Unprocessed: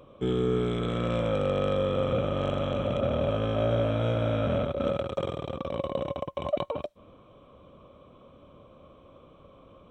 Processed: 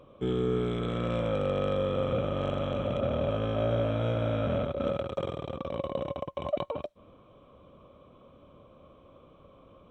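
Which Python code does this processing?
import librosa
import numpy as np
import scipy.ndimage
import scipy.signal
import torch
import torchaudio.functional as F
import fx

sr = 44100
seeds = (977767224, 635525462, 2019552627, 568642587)

y = fx.high_shelf(x, sr, hz=6300.0, db=-5.5)
y = y * 10.0 ** (-2.0 / 20.0)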